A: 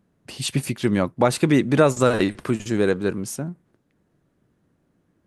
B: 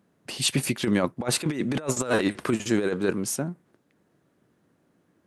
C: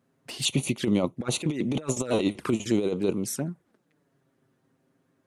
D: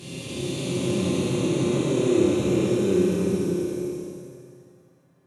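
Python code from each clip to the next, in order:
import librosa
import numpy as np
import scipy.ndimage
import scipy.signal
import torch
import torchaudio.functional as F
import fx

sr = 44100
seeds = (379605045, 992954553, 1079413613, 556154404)

y1 = fx.highpass(x, sr, hz=240.0, slope=6)
y1 = fx.over_compress(y1, sr, threshold_db=-23.0, ratio=-0.5)
y2 = fx.env_flanger(y1, sr, rest_ms=7.8, full_db=-23.0)
y3 = fx.spec_blur(y2, sr, span_ms=1220.0)
y3 = fx.rev_fdn(y3, sr, rt60_s=1.6, lf_ratio=1.0, hf_ratio=0.8, size_ms=17.0, drr_db=-8.5)
y3 = y3 * librosa.db_to_amplitude(-1.0)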